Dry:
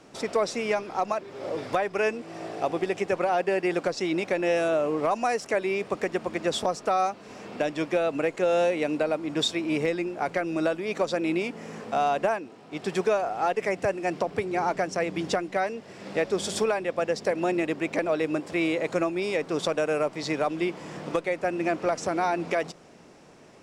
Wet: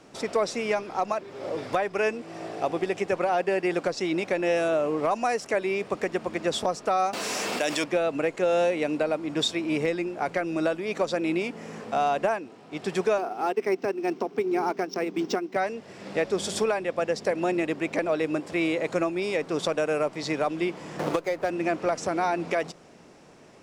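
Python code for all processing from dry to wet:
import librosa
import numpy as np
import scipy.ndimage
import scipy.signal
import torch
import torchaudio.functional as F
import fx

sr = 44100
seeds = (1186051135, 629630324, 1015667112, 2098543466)

y = fx.chain(x, sr, fx.riaa(side='recording'),
    fx.env_flatten(amount_pct=70), at=(7.13, 7.84))
y = fx.chain(y, sr, fx.transient(attack_db=-2, sustain_db=-6),
    fx.cabinet(low_hz=220.0, low_slope=12, high_hz=7000.0, hz=(240.0, 380.0, 570.0, 1800.0, 5500.0), db=(8, 9, -8, -4, 7)),
    fx.resample_linear(factor=4), at=(13.18, 15.56))
y = fx.chain(y, sr, fx.median_filter(points=15),
    fx.peak_eq(hz=210.0, db=-7.0, octaves=0.75),
    fx.band_squash(depth_pct=100), at=(20.99, 21.5))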